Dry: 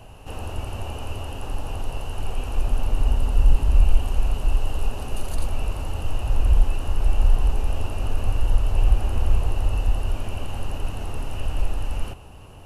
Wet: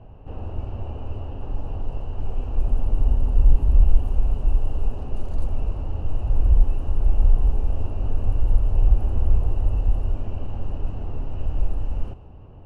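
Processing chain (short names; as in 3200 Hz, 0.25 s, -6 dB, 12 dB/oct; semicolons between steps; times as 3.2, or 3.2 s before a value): tilt shelf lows +9 dB, about 1100 Hz; low-pass opened by the level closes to 3000 Hz, open at -4 dBFS; gain -8 dB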